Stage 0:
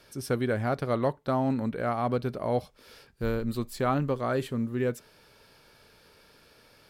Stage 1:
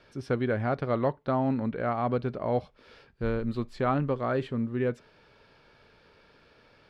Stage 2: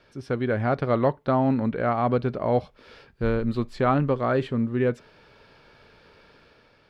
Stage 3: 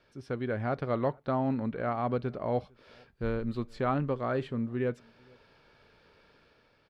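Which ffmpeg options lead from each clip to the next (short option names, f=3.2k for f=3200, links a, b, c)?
-af "lowpass=3.3k"
-af "dynaudnorm=f=110:g=9:m=5dB"
-filter_complex "[0:a]asplit=2[a][b];[b]adelay=454.8,volume=-29dB,highshelf=f=4k:g=-10.2[c];[a][c]amix=inputs=2:normalize=0,volume=-7.5dB"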